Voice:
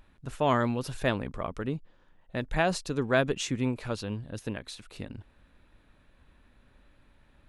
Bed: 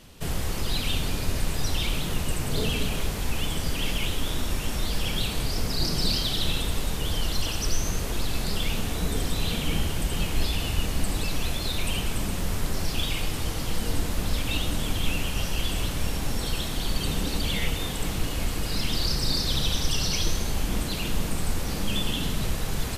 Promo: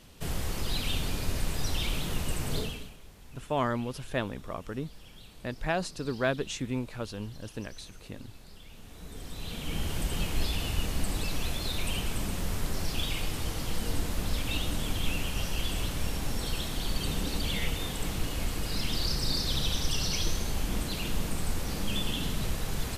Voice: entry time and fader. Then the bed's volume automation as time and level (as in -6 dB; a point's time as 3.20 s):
3.10 s, -3.5 dB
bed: 2.56 s -4 dB
2.98 s -23.5 dB
8.68 s -23.5 dB
9.95 s -4 dB